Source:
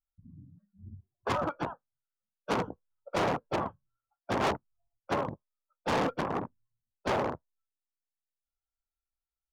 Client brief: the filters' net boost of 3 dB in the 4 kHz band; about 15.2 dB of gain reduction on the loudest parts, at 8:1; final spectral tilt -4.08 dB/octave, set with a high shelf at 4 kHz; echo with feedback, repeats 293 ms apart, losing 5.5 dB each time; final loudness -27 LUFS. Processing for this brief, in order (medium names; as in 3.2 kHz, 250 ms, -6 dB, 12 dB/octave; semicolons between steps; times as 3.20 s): treble shelf 4 kHz -8 dB; peaking EQ 4 kHz +8.5 dB; compression 8:1, threshold -42 dBFS; feedback delay 293 ms, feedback 53%, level -5.5 dB; trim +20 dB